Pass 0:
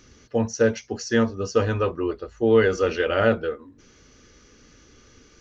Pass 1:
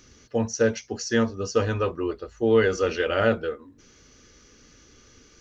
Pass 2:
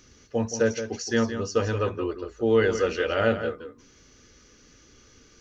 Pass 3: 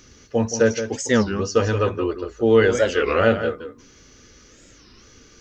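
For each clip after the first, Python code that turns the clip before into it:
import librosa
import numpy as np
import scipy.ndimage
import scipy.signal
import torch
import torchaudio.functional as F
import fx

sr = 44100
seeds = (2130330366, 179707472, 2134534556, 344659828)

y1 = fx.high_shelf(x, sr, hz=4400.0, db=5.5)
y1 = y1 * librosa.db_to_amplitude(-2.0)
y2 = y1 + 10.0 ** (-10.0 / 20.0) * np.pad(y1, (int(171 * sr / 1000.0), 0))[:len(y1)]
y2 = y2 * librosa.db_to_amplitude(-1.5)
y3 = fx.record_warp(y2, sr, rpm=33.33, depth_cents=250.0)
y3 = y3 * librosa.db_to_amplitude(5.5)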